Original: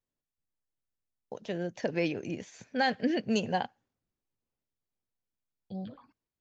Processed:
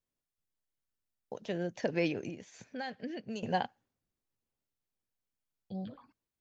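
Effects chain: 2.29–3.43 compressor 2:1, threshold -45 dBFS, peak gain reduction 12 dB; gain -1 dB

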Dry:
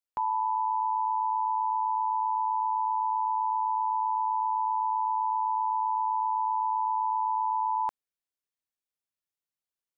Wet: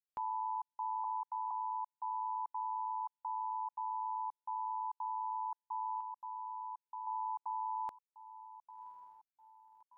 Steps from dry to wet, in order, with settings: limiter -25 dBFS, peak gain reduction 3 dB; 6–7.07 dynamic EQ 840 Hz, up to -5 dB, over -42 dBFS, Q 1; diffused feedback echo 1.102 s, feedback 40%, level -13.5 dB; step gate ".xxxxxx..xxxxx" 171 bpm -60 dB; 1.04–1.51 steep high-pass 430 Hz 48 dB/oct; gain -6.5 dB

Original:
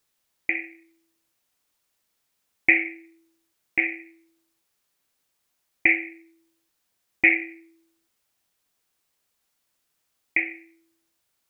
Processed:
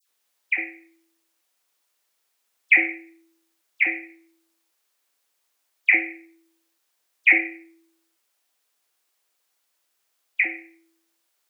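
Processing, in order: HPF 390 Hz 12 dB/oct; dispersion lows, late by 92 ms, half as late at 1700 Hz; gain +2 dB

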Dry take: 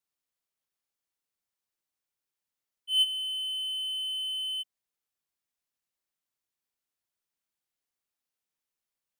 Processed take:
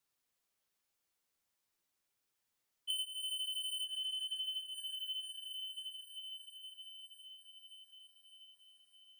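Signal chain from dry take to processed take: 2.9–3.85 tilt +4.5 dB/oct; flange 0.35 Hz, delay 7.2 ms, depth 5.8 ms, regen -27%; dynamic EQ 4000 Hz, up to -5 dB, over -35 dBFS, Q 0.99; diffused feedback echo 0.508 s, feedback 69%, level -15.5 dB; compressor 20:1, threshold -45 dBFS, peak gain reduction 27 dB; gain +8 dB

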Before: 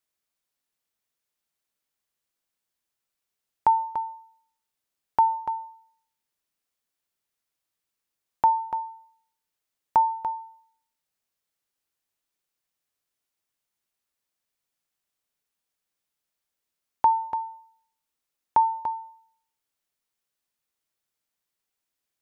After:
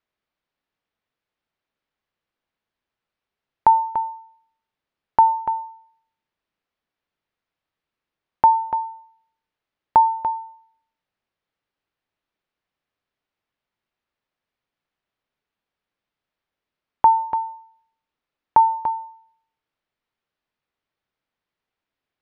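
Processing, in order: air absorption 280 m; gain +7 dB

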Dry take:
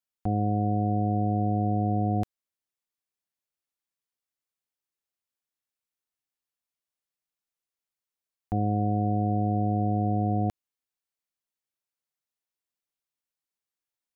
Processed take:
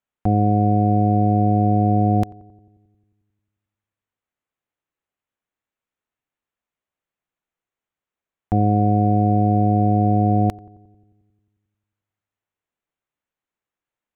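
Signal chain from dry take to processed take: Wiener smoothing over 9 samples; darkening echo 89 ms, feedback 73%, low-pass 880 Hz, level -21 dB; gain +9 dB

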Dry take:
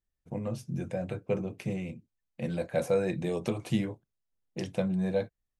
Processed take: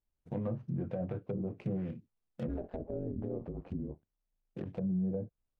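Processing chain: median filter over 25 samples; treble ducked by the level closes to 310 Hz, closed at -26 dBFS; limiter -27 dBFS, peak gain reduction 9 dB; 2.47–4.64 ring modulator 110 Hz -> 23 Hz

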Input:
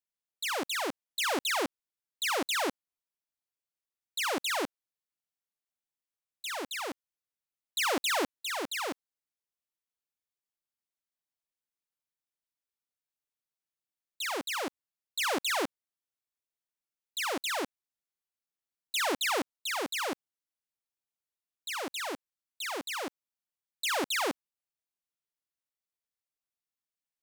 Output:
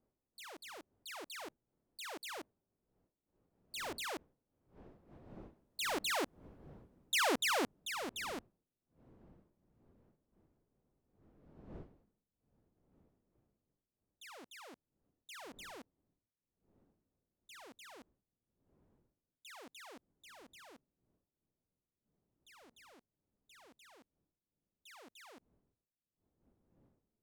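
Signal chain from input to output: wind noise 350 Hz -52 dBFS; Doppler pass-by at 6.37, 36 m/s, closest 23 m; gain +1.5 dB

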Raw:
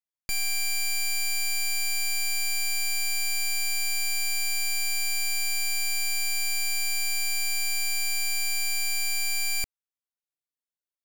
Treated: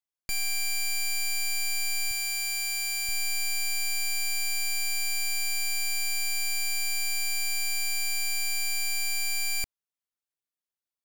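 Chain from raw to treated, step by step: 2.11–3.09 low shelf 290 Hz -8.5 dB; gain -1.5 dB

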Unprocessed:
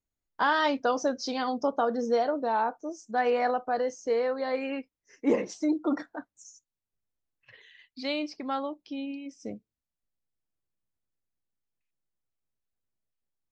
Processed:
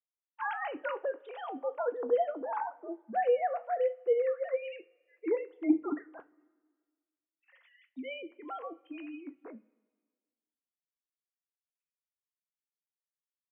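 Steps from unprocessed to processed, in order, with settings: sine-wave speech; two-slope reverb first 0.26 s, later 1.6 s, from -20 dB, DRR 10 dB; gain -5 dB

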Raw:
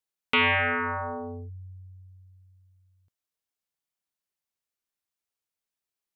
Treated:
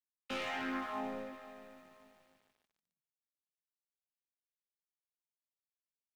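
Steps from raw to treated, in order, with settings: chord vocoder minor triad, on D#3; Doppler pass-by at 1.85, 41 m/s, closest 2.5 m; sample leveller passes 3; chorus 0.39 Hz, delay 19.5 ms, depth 4.8 ms; feedback echo 0.519 s, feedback 23%, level -17 dB; lo-fi delay 0.146 s, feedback 80%, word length 12-bit, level -15 dB; gain +10 dB

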